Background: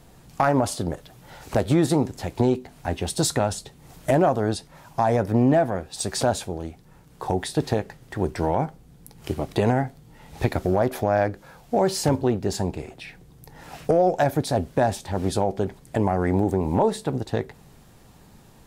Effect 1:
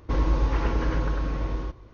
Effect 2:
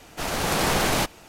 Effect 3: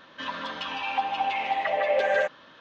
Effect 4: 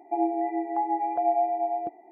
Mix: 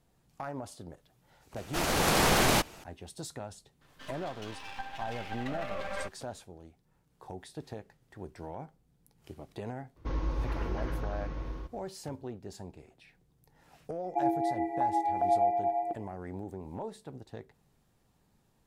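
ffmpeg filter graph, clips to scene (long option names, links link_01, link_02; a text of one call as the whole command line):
ffmpeg -i bed.wav -i cue0.wav -i cue1.wav -i cue2.wav -i cue3.wav -filter_complex "[0:a]volume=-19dB[link_01];[3:a]aeval=exprs='max(val(0),0)':channel_layout=same[link_02];[4:a]tiltshelf=frequency=1100:gain=-3.5[link_03];[2:a]atrim=end=1.28,asetpts=PTS-STARTPTS,volume=-2dB,afade=type=in:duration=0.004:curve=hsin,afade=type=out:start_time=1.276:duration=0.004:curve=hsin,adelay=1560[link_04];[link_02]atrim=end=2.6,asetpts=PTS-STARTPTS,volume=-9.5dB,afade=type=in:duration=0.004:curve=hsin,afade=type=out:start_time=2.596:duration=0.004:curve=hsin,adelay=168021S[link_05];[1:a]atrim=end=1.93,asetpts=PTS-STARTPTS,volume=-9.5dB,afade=type=in:duration=0.004:curve=hsin,afade=type=out:start_time=1.926:duration=0.004:curve=hsin,adelay=9960[link_06];[link_03]atrim=end=2.11,asetpts=PTS-STARTPTS,volume=-1dB,afade=type=in:duration=0.004:curve=hsin,afade=type=out:start_time=2.106:duration=0.004:curve=hsin,adelay=14040[link_07];[link_01][link_04][link_05][link_06][link_07]amix=inputs=5:normalize=0" out.wav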